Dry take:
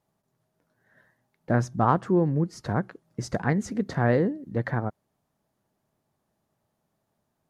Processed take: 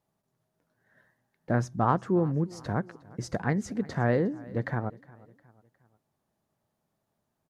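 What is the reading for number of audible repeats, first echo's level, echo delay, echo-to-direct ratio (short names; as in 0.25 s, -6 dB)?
2, -22.0 dB, 0.359 s, -21.0 dB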